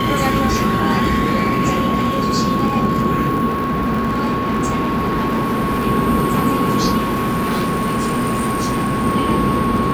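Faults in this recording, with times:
crackle 36 per s -23 dBFS
whine 1.1 kHz -20 dBFS
3.47–5.88 s: clipped -15 dBFS
6.97–9.06 s: clipped -15.5 dBFS

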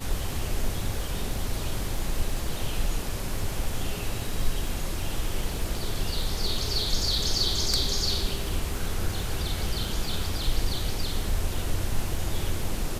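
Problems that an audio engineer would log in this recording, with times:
crackle 39 per s -33 dBFS

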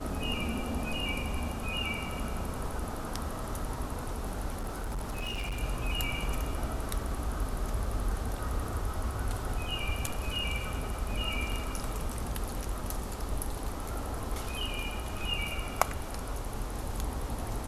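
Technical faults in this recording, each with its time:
4.59–5.60 s: clipped -31 dBFS

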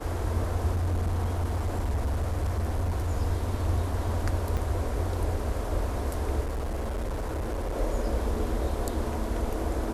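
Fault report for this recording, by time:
0.71–3.12 s: clipped -23.5 dBFS
4.57–4.58 s: dropout 5 ms
6.43–7.76 s: clipped -27.5 dBFS

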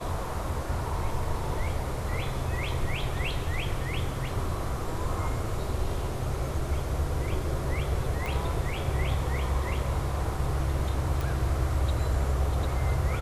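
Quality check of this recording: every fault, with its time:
8.26 s: pop
11.21 s: pop

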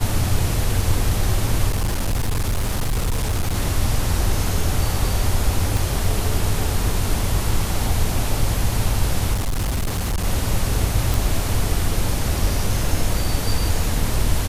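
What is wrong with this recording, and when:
1.69–3.56 s: clipped -17 dBFS
5.77 s: pop
9.33–10.25 s: clipped -18.5 dBFS
11.14 s: pop

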